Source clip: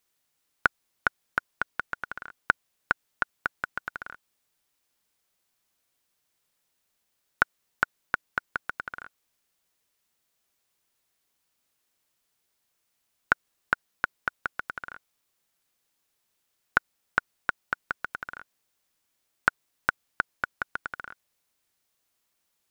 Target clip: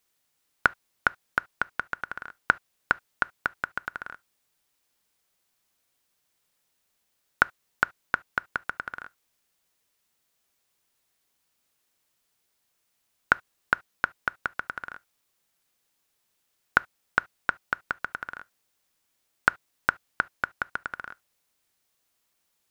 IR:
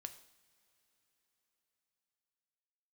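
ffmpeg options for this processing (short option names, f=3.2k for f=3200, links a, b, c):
-filter_complex "[0:a]asplit=2[a][b];[1:a]atrim=start_sample=2205,atrim=end_sample=3528[c];[b][c]afir=irnorm=-1:irlink=0,volume=-4dB[d];[a][d]amix=inputs=2:normalize=0,volume=-1dB"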